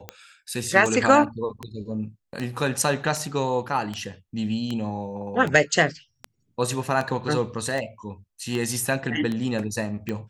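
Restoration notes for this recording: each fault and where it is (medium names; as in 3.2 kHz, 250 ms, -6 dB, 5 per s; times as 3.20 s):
tick 78 rpm -16 dBFS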